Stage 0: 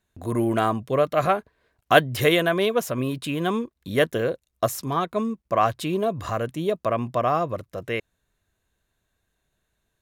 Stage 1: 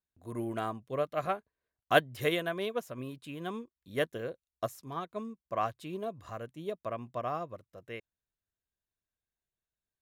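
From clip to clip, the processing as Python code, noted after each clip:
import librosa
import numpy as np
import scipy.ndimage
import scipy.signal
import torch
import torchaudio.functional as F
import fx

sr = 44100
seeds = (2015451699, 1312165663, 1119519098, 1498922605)

y = fx.upward_expand(x, sr, threshold_db=-39.0, expansion=1.5)
y = y * 10.0 ** (-7.5 / 20.0)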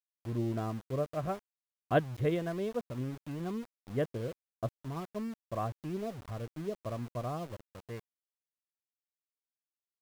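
y = fx.tilt_eq(x, sr, slope=-4.5)
y = np.where(np.abs(y) >= 10.0 ** (-38.5 / 20.0), y, 0.0)
y = y * 10.0 ** (-6.0 / 20.0)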